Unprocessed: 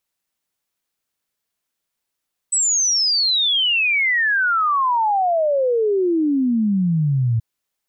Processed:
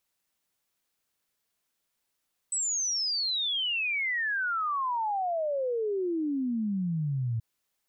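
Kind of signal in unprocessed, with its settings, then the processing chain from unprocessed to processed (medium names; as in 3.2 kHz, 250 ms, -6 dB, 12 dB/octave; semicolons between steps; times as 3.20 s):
log sweep 8.1 kHz -> 110 Hz 4.88 s -15 dBFS
peak limiter -26.5 dBFS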